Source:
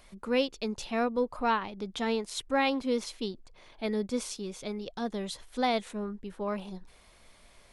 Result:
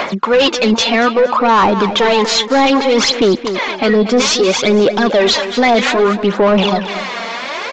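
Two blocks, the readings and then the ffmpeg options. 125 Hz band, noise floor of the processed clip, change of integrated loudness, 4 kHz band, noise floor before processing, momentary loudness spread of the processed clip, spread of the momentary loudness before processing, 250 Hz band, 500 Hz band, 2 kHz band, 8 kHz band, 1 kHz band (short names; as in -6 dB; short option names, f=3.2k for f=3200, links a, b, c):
+21.0 dB, -24 dBFS, +19.5 dB, +23.5 dB, -58 dBFS, 6 LU, 10 LU, +18.0 dB, +20.5 dB, +21.0 dB, +21.5 dB, +19.0 dB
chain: -filter_complex "[0:a]highpass=200,highshelf=f=5.7k:g=-10.5,areverse,acompressor=threshold=-38dB:ratio=6,areverse,aphaser=in_gain=1:out_gain=1:delay=4.4:decay=0.69:speed=0.62:type=sinusoidal,asoftclip=type=tanh:threshold=-27dB,asplit=2[a][b];[b]highpass=f=720:p=1,volume=18dB,asoftclip=type=tanh:threshold=-27dB[c];[a][c]amix=inputs=2:normalize=0,lowpass=f=3k:p=1,volume=-6dB,aecho=1:1:232|464|696:0.224|0.0694|0.0215,aresample=16000,aresample=44100,alimiter=level_in=31dB:limit=-1dB:release=50:level=0:latency=1,volume=-4dB"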